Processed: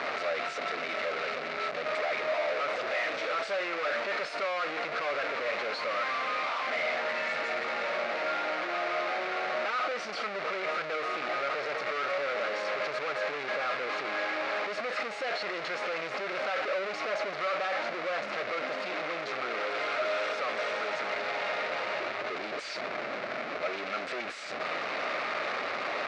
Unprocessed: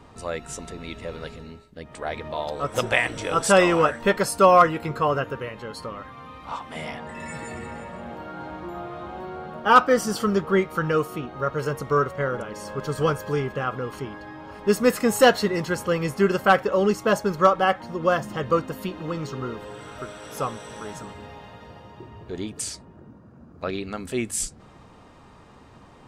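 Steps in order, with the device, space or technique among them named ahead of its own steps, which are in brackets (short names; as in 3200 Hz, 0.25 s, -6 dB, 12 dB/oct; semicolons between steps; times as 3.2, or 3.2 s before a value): home computer beeper (infinite clipping; speaker cabinet 570–4100 Hz, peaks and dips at 610 Hz +8 dB, 930 Hz -8 dB, 1300 Hz +4 dB, 2200 Hz +6 dB, 3200 Hz -6 dB); gain -5.5 dB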